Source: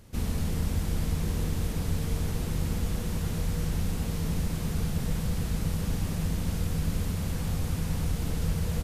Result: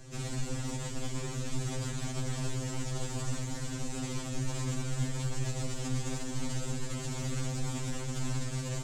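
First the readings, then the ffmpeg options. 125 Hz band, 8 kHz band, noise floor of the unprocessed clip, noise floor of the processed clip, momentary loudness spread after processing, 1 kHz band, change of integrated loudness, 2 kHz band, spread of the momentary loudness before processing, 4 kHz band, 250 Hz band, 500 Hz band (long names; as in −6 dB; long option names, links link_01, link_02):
−5.0 dB, +2.0 dB, −33 dBFS, −38 dBFS, 3 LU, −1.5 dB, −5.0 dB, −1.0 dB, 1 LU, −0.5 dB, −5.0 dB, −2.0 dB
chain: -filter_complex "[0:a]acrossover=split=4800[link_01][link_02];[link_01]acontrast=61[link_03];[link_03][link_02]amix=inputs=2:normalize=0,alimiter=limit=-20.5dB:level=0:latency=1:release=12,lowpass=frequency=7500:width_type=q:width=4.4,asoftclip=type=tanh:threshold=-23dB,afftfilt=real='re*2.45*eq(mod(b,6),0)':imag='im*2.45*eq(mod(b,6),0)':win_size=2048:overlap=0.75"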